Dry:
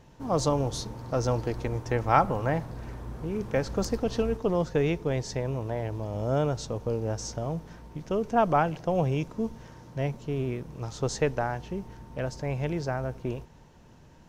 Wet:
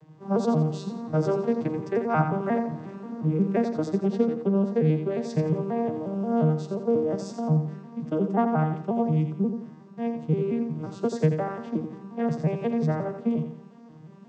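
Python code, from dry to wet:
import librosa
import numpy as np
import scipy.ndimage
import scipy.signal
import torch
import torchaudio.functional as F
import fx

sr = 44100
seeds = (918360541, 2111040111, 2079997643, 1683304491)

y = fx.vocoder_arp(x, sr, chord='major triad', root=51, every_ms=178)
y = fx.rider(y, sr, range_db=3, speed_s=0.5)
y = fx.echo_feedback(y, sr, ms=86, feedback_pct=38, wet_db=-8.0)
y = F.gain(torch.from_numpy(y), 4.0).numpy()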